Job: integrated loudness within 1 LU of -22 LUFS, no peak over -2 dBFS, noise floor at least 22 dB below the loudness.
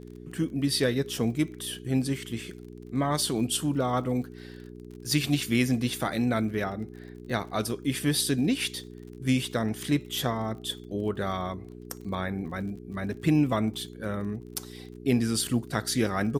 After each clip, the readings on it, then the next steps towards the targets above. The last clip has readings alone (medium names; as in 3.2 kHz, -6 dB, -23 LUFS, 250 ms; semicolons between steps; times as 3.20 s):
tick rate 38 per s; hum 60 Hz; highest harmonic 420 Hz; hum level -44 dBFS; loudness -28.5 LUFS; peak level -11.5 dBFS; loudness target -22.0 LUFS
-> de-click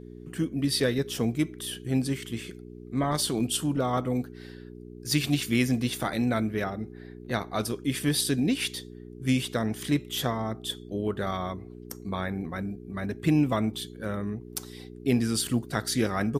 tick rate 0.18 per s; hum 60 Hz; highest harmonic 420 Hz; hum level -44 dBFS
-> de-hum 60 Hz, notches 7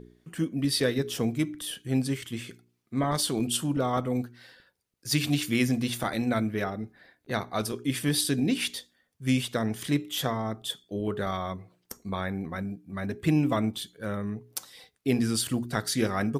hum not found; loudness -29.0 LUFS; peak level -12.0 dBFS; loudness target -22.0 LUFS
-> trim +7 dB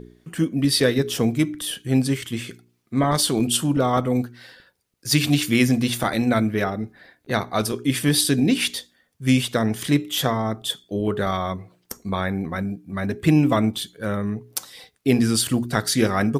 loudness -22.0 LUFS; peak level -5.0 dBFS; noise floor -67 dBFS